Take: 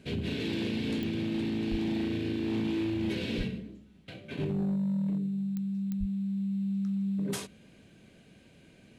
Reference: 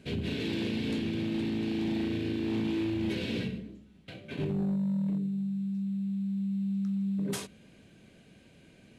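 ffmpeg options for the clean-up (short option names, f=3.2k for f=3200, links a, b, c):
-filter_complex "[0:a]adeclick=t=4,asplit=3[a][b][c];[a]afade=t=out:st=1.7:d=0.02[d];[b]highpass=f=140:w=0.5412,highpass=f=140:w=1.3066,afade=t=in:st=1.7:d=0.02,afade=t=out:st=1.82:d=0.02[e];[c]afade=t=in:st=1.82:d=0.02[f];[d][e][f]amix=inputs=3:normalize=0,asplit=3[g][h][i];[g]afade=t=out:st=3.37:d=0.02[j];[h]highpass=f=140:w=0.5412,highpass=f=140:w=1.3066,afade=t=in:st=3.37:d=0.02,afade=t=out:st=3.49:d=0.02[k];[i]afade=t=in:st=3.49:d=0.02[l];[j][k][l]amix=inputs=3:normalize=0,asplit=3[m][n][o];[m]afade=t=out:st=5.99:d=0.02[p];[n]highpass=f=140:w=0.5412,highpass=f=140:w=1.3066,afade=t=in:st=5.99:d=0.02,afade=t=out:st=6.11:d=0.02[q];[o]afade=t=in:st=6.11:d=0.02[r];[p][q][r]amix=inputs=3:normalize=0"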